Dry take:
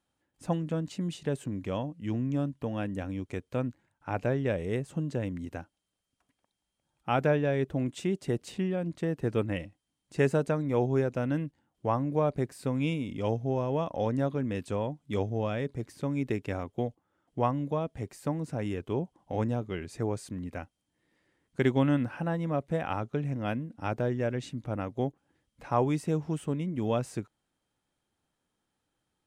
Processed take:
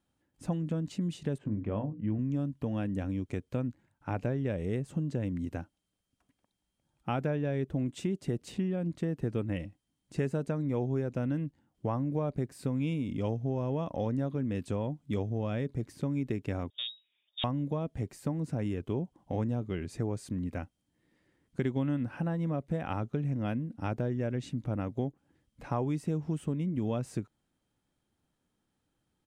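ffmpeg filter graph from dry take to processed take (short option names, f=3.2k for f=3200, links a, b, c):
-filter_complex "[0:a]asettb=1/sr,asplit=3[a][b][c];[a]atrim=end=1.384[d];[b]atrim=start=1.38:end=2.19,asetpts=PTS-STARTPTS,afade=t=in:d=0.004:c=qsin,afade=t=out:st=0.806:d=0.004:c=qsin,lowpass=1.8k,bandreject=f=60:t=h:w=6,bandreject=f=120:t=h:w=6,bandreject=f=180:t=h:w=6,bandreject=f=240:t=h:w=6,bandreject=f=300:t=h:w=6,bandreject=f=360:t=h:w=6,bandreject=f=420:t=h:w=6,bandreject=f=480:t=h:w=6,asplit=2[e][f];[f]adelay=19,volume=-8.5dB[g];[e][g]amix=inputs=2:normalize=0,atrim=end_sample=35721[h];[c]atrim=start=2.186[i];[d][h]acrossfade=d=0.004:c1=hsin:c2=qsin[j];[j][i]acrossfade=d=0.004:c1=qsin:c2=hsin,asettb=1/sr,asplit=3[k][l][m];[k]atrim=end=16.704[n];[l]atrim=start=16.7:end=17.44,asetpts=PTS-STARTPTS,afade=t=in:d=0.004:c=qsin,afade=t=out:st=0.736:d=0.004:c=qsin,aeval=exprs='(tanh(31.6*val(0)+0.4)-tanh(0.4))/31.6':c=same,lowpass=f=3.2k:t=q:w=0.5098,lowpass=f=3.2k:t=q:w=0.6013,lowpass=f=3.2k:t=q:w=0.9,lowpass=f=3.2k:t=q:w=2.563,afreqshift=-3800[o];[m]atrim=start=17.436[p];[n][o]acrossfade=d=0.004:c1=hsin:c2=qsin[q];[q][p]acrossfade=d=0.004:c1=qsin:c2=hsin,firequalizer=gain_entry='entry(240,0);entry(430,-4);entry(810,-6)':delay=0.05:min_phase=1,acompressor=threshold=-34dB:ratio=3,volume=4.5dB"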